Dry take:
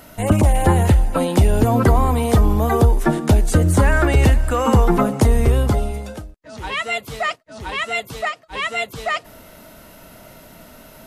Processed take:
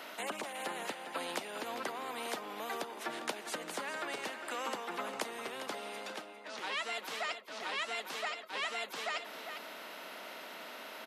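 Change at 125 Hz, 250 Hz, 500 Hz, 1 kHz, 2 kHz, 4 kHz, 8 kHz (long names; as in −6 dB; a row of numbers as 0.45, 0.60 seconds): below −40 dB, −28.5 dB, −20.5 dB, −16.5 dB, −13.5 dB, −9.5 dB, −15.0 dB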